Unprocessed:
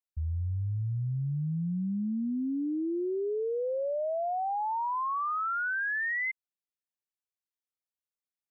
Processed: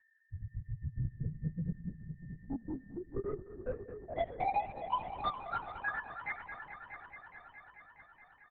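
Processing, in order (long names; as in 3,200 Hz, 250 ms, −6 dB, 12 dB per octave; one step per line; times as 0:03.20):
time-frequency cells dropped at random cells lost 75%
high-pass filter 87 Hz 12 dB per octave
flat-topped bell 820 Hz +9.5 dB 1.3 octaves
comb filter 7.3 ms, depth 52%
soft clipping −24 dBFS, distortion −10 dB
steady tone 1,800 Hz −65 dBFS
flanger 1.2 Hz, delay 5.2 ms, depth 6.2 ms, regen −77%
echo machine with several playback heads 213 ms, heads all three, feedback 66%, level −16 dB
on a send at −21.5 dB: convolution reverb RT60 1.4 s, pre-delay 39 ms
on the sum: linear-prediction vocoder at 8 kHz whisper
level +1 dB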